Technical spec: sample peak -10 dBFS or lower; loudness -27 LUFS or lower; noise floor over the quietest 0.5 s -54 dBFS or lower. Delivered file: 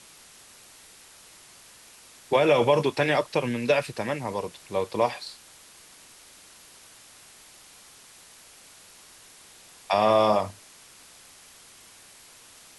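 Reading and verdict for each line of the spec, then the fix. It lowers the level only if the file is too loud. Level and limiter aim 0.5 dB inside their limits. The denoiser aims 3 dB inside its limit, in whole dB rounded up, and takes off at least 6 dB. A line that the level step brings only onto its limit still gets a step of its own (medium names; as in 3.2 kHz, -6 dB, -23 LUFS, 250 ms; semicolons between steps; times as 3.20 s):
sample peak -8.5 dBFS: fail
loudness -24.5 LUFS: fail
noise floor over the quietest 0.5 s -51 dBFS: fail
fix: noise reduction 6 dB, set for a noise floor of -51 dBFS; trim -3 dB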